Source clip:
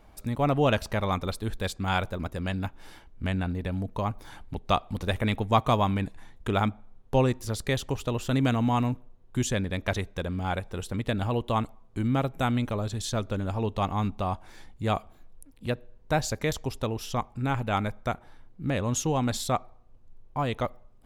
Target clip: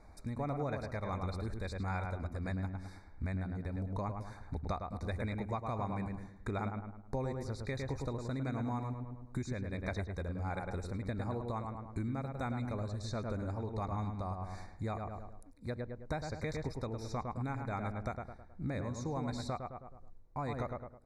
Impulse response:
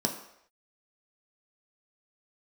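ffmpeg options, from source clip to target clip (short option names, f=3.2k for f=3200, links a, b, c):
-filter_complex "[0:a]lowpass=f=10k:w=0.5412,lowpass=f=10k:w=1.3066,acrossover=split=4900[a][b];[b]acompressor=threshold=-48dB:ratio=4:attack=1:release=60[c];[a][c]amix=inputs=2:normalize=0,asuperstop=centerf=3000:order=20:qfactor=2.5,equalizer=f=78:w=4.3:g=9,asplit=2[d][e];[e]adelay=106,lowpass=f=2k:p=1,volume=-5dB,asplit=2[f][g];[g]adelay=106,lowpass=f=2k:p=1,volume=0.4,asplit=2[h][i];[i]adelay=106,lowpass=f=2k:p=1,volume=0.4,asplit=2[j][k];[k]adelay=106,lowpass=f=2k:p=1,volume=0.4,asplit=2[l][m];[m]adelay=106,lowpass=f=2k:p=1,volume=0.4[n];[f][h][j][l][n]amix=inputs=5:normalize=0[o];[d][o]amix=inputs=2:normalize=0,tremolo=f=1.5:d=0.46,acompressor=threshold=-32dB:ratio=5,volume=-2.5dB"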